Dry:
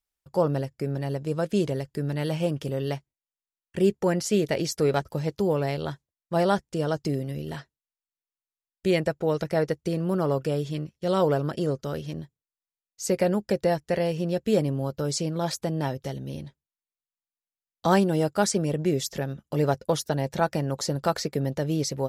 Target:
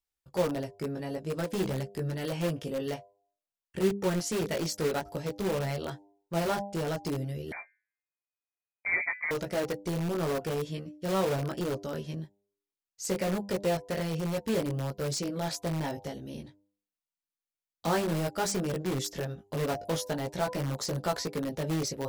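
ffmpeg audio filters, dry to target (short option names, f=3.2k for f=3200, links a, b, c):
-filter_complex "[0:a]bandreject=f=100.1:t=h:w=4,bandreject=f=200.2:t=h:w=4,bandreject=f=300.3:t=h:w=4,bandreject=f=400.4:t=h:w=4,bandreject=f=500.5:t=h:w=4,bandreject=f=600.6:t=h:w=4,bandreject=f=700.7:t=h:w=4,bandreject=f=800.8:t=h:w=4,bandreject=f=900.9:t=h:w=4,bandreject=f=1.001k:t=h:w=4,flanger=delay=15.5:depth=3.1:speed=0.53,asplit=2[a][b];[b]aeval=exprs='(mod(16.8*val(0)+1,2)-1)/16.8':c=same,volume=-7dB[c];[a][c]amix=inputs=2:normalize=0,asettb=1/sr,asplit=3[d][e][f];[d]atrim=end=7.524[g];[e]atrim=start=7.52:end=9.31,asetpts=PTS-STARTPTS,afade=t=in:d=0.004:c=qsin,afade=t=out:st=1.786:d=0.004:c=qsin,lowpass=f=2.1k:t=q:w=0.5098,lowpass=f=2.1k:t=q:w=0.6013,lowpass=f=2.1k:t=q:w=0.9,lowpass=f=2.1k:t=q:w=2.563,afreqshift=-2500[h];[f]atrim=start=9.306[i];[g][h]acrossfade=d=0.004:c1=hsin:c2=qsin[j];[j][i]acrossfade=d=0.004:c1=qsin:c2=hsin,volume=-3.5dB"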